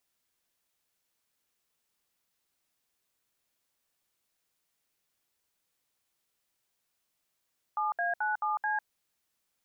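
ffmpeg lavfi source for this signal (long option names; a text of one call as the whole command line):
ffmpeg -f lavfi -i "aevalsrc='0.0316*clip(min(mod(t,0.217),0.151-mod(t,0.217))/0.002,0,1)*(eq(floor(t/0.217),0)*(sin(2*PI*852*mod(t,0.217))+sin(2*PI*1209*mod(t,0.217)))+eq(floor(t/0.217),1)*(sin(2*PI*697*mod(t,0.217))+sin(2*PI*1633*mod(t,0.217)))+eq(floor(t/0.217),2)*(sin(2*PI*852*mod(t,0.217))+sin(2*PI*1477*mod(t,0.217)))+eq(floor(t/0.217),3)*(sin(2*PI*852*mod(t,0.217))+sin(2*PI*1209*mod(t,0.217)))+eq(floor(t/0.217),4)*(sin(2*PI*852*mod(t,0.217))+sin(2*PI*1633*mod(t,0.217))))':duration=1.085:sample_rate=44100" out.wav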